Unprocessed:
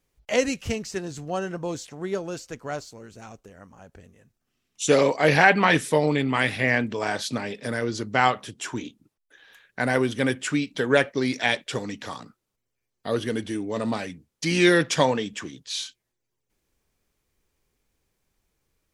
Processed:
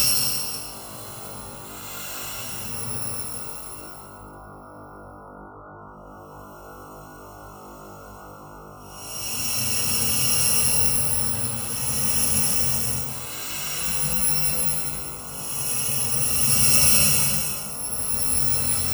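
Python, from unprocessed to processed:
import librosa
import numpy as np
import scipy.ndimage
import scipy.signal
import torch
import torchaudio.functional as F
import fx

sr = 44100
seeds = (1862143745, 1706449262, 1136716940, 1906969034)

y = fx.bit_reversed(x, sr, seeds[0], block=128)
y = fx.dmg_buzz(y, sr, base_hz=50.0, harmonics=29, level_db=-43.0, tilt_db=-1, odd_only=False)
y = fx.paulstretch(y, sr, seeds[1], factor=6.3, window_s=0.25, from_s=8.29)
y = y * librosa.db_to_amplitude(1.0)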